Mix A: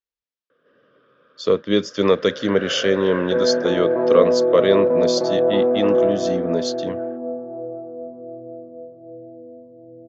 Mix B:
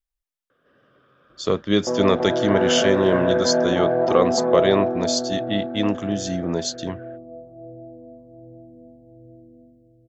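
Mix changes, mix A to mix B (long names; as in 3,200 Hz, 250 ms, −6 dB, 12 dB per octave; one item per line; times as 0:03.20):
second sound: entry −1.45 s
master: remove loudspeaker in its box 120–5,800 Hz, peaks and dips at 130 Hz −4 dB, 480 Hz +7 dB, 770 Hz −7 dB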